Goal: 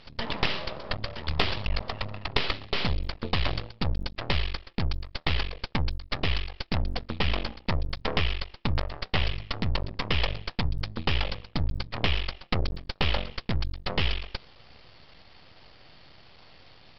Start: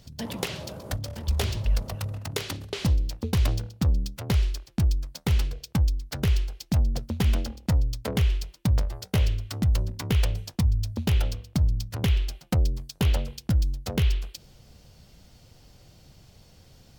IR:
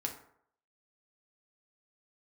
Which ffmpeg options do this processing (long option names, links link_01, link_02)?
-af "asuperstop=centerf=1500:order=4:qfactor=5.7,tiltshelf=frequency=630:gain=-10,aresample=11025,aeval=exprs='max(val(0),0)':channel_layout=same,aresample=44100,aemphasis=mode=reproduction:type=75fm,aeval=exprs='0.355*(cos(1*acos(clip(val(0)/0.355,-1,1)))-cos(1*PI/2))+0.00891*(cos(4*acos(clip(val(0)/0.355,-1,1)))-cos(4*PI/2))':channel_layout=same,volume=7dB"